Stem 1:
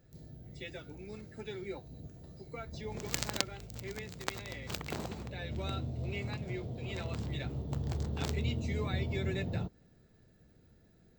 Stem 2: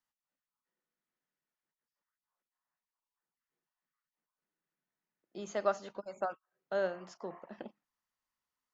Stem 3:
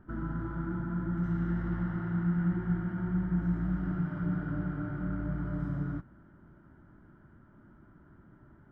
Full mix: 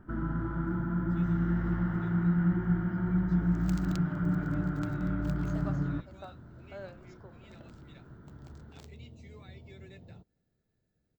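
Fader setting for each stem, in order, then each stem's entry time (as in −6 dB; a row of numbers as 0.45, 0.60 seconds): −15.5, −12.0, +2.5 decibels; 0.55, 0.00, 0.00 seconds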